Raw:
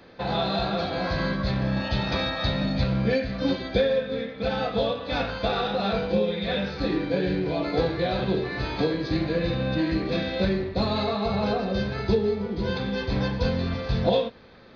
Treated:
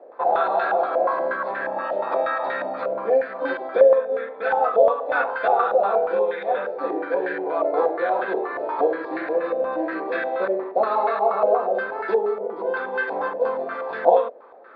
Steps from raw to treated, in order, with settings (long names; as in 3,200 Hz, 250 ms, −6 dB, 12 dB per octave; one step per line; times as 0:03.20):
high-pass filter 380 Hz 24 dB per octave
low-pass on a step sequencer 8.4 Hz 630–1,600 Hz
level +2 dB